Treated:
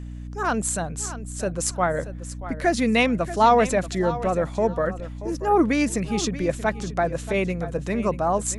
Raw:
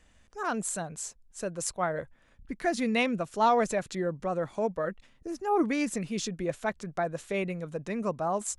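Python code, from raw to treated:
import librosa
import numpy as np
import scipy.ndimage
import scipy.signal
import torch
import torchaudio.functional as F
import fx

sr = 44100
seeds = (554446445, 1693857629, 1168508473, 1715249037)

y = fx.echo_feedback(x, sr, ms=632, feedback_pct=21, wet_db=-14.0)
y = fx.add_hum(y, sr, base_hz=60, snr_db=11)
y = F.gain(torch.from_numpy(y), 7.0).numpy()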